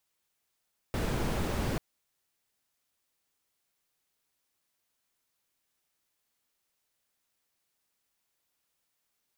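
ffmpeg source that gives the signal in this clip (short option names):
-f lavfi -i "anoisesrc=c=brown:a=0.14:d=0.84:r=44100:seed=1"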